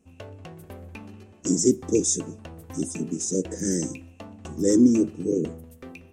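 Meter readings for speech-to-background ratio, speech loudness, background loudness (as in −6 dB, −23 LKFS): 19.0 dB, −24.0 LKFS, −43.0 LKFS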